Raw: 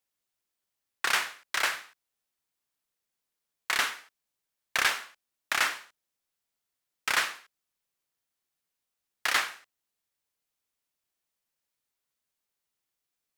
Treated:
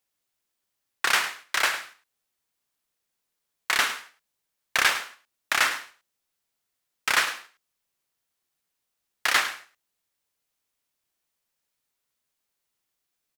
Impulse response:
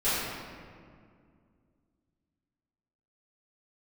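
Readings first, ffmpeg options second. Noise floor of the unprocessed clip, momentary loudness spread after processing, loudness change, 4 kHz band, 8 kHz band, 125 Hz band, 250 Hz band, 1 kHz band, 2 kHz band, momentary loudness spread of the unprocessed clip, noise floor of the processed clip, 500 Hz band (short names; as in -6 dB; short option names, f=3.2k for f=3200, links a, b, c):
under -85 dBFS, 14 LU, +4.0 dB, +4.0 dB, +4.0 dB, n/a, +4.0 dB, +4.0 dB, +4.0 dB, 12 LU, -81 dBFS, +4.5 dB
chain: -af "aecho=1:1:105:0.224,volume=4dB"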